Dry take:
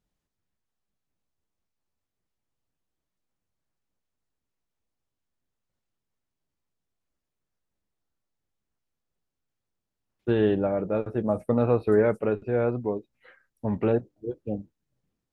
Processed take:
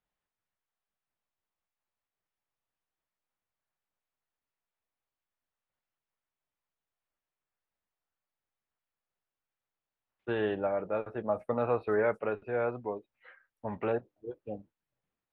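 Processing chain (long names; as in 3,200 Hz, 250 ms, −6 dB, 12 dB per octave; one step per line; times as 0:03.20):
three-way crossover with the lows and the highs turned down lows −13 dB, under 570 Hz, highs −18 dB, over 3,400 Hz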